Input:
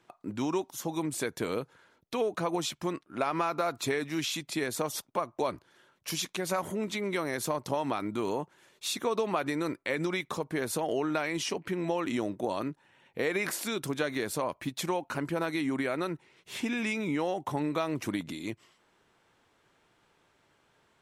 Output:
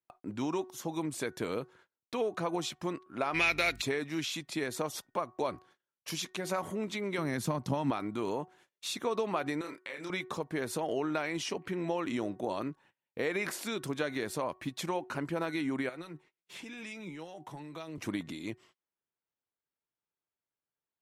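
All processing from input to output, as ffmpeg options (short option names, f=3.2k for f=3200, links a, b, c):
-filter_complex "[0:a]asettb=1/sr,asplit=3[a][b][c];[a]atrim=end=3.344[d];[b]atrim=start=3.34:end=3.82,asetpts=PTS-STARTPTS,afade=t=in:d=0.004:c=qsin,afade=t=out:st=0.476:d=0.004:c=qsin,highshelf=f=1.6k:t=q:w=3:g=12,aeval=exprs='val(0)+0.00398*(sin(2*PI*50*n/s)+sin(2*PI*2*50*n/s)/2+sin(2*PI*3*50*n/s)/3+sin(2*PI*4*50*n/s)/4+sin(2*PI*5*50*n/s)/5)':c=same[e];[c]atrim=start=3.816[f];[d][e]acrossfade=d=0.004:c1=hsin:c2=qsin[g];[g][f]acrossfade=d=0.004:c1=qsin:c2=hsin,asettb=1/sr,asplit=3[h][i][j];[h]atrim=end=7.184[k];[i]atrim=start=7.18:end=7.91,asetpts=PTS-STARTPTS,afade=t=in:d=0.004:c=qsin,afade=t=out:st=0.726:d=0.004:c=qsin,highpass=49,lowshelf=f=300:t=q:w=1.5:g=7.5[l];[j]atrim=start=7.906[m];[k][l]acrossfade=d=0.004:c1=hsin:c2=qsin[n];[n][m]acrossfade=d=0.004:c1=qsin:c2=hsin,asettb=1/sr,asplit=3[o][p][q];[o]atrim=end=9.614[r];[p]atrim=start=9.61:end=10.1,asetpts=PTS-STARTPTS,afade=t=in:d=0.004:c=qsin,afade=t=out:st=0.486:d=0.004:c=qsin,highpass=f=820:p=1,acompressor=threshold=-34dB:ratio=6:attack=3.2:release=140:knee=1:detection=peak,asplit=2[s][t];[t]adelay=29,volume=-4.5dB[u];[s][u]amix=inputs=2:normalize=0,atrim=end_sample=21609[v];[q]atrim=start=10.096[w];[r][v]acrossfade=d=0.004:c1=hsin:c2=qsin[x];[x][w]acrossfade=d=0.004:c1=qsin:c2=hsin,asettb=1/sr,asplit=3[y][z][aa];[y]atrim=end=15.894[ab];[z]atrim=start=15.89:end=17.98,asetpts=PTS-STARTPTS,afade=t=in:d=0.004:c=qsin,afade=t=out:st=2.086:d=0.004:c=qsin,acrossover=split=140|3000[ac][ad][ae];[ad]acompressor=threshold=-34dB:ratio=10:attack=3.2:release=140:knee=2.83:detection=peak[af];[ac][af][ae]amix=inputs=3:normalize=0,flanger=delay=5.5:depth=1.3:regen=50:speed=1.7:shape=triangular,equalizer=f=71:t=o:w=1.1:g=-9.5[ag];[aa]atrim=start=17.976[ah];[ab][ag]acrossfade=d=0.004:c1=hsin:c2=qsin[ai];[ai][ah]acrossfade=d=0.004:c1=qsin:c2=hsin,highshelf=f=9.1k:g=-6.5,bandreject=f=370.3:t=h:w=4,bandreject=f=740.6:t=h:w=4,bandreject=f=1.1109k:t=h:w=4,bandreject=f=1.4812k:t=h:w=4,bandreject=f=1.8515k:t=h:w=4,agate=range=-29dB:threshold=-56dB:ratio=16:detection=peak,volume=-2.5dB"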